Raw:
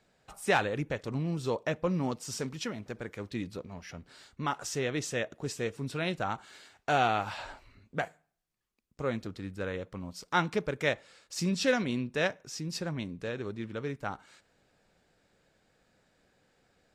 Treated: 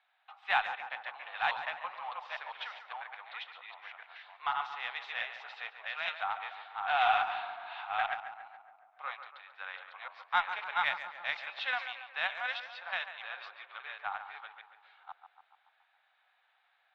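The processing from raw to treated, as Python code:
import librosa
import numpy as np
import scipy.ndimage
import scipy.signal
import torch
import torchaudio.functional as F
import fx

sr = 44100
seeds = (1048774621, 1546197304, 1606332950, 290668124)

p1 = fx.reverse_delay(x, sr, ms=504, wet_db=-2.5)
p2 = scipy.signal.sosfilt(scipy.signal.cheby1(4, 1.0, [750.0, 3700.0], 'bandpass', fs=sr, output='sos'), p1)
p3 = fx.cheby_harmonics(p2, sr, harmonics=(2, 6), levels_db=(-33, -42), full_scale_db=-14.0)
y = p3 + fx.echo_tape(p3, sr, ms=141, feedback_pct=66, wet_db=-8.5, lp_hz=2200.0, drive_db=17.0, wow_cents=29, dry=0)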